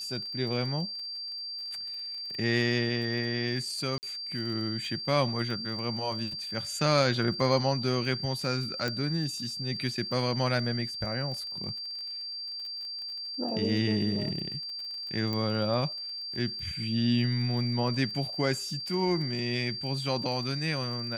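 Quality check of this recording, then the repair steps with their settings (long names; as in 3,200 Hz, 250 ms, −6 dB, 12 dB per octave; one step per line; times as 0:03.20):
surface crackle 25 per second −38 dBFS
whistle 4,700 Hz −35 dBFS
0:03.98–0:04.03: drop-out 49 ms
0:08.88: click −17 dBFS
0:15.33: click −20 dBFS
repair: click removal
notch filter 4,700 Hz, Q 30
repair the gap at 0:03.98, 49 ms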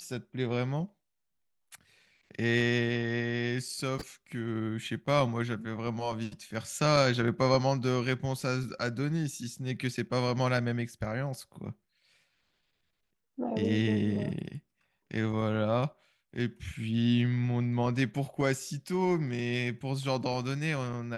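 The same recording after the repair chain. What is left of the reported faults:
none of them is left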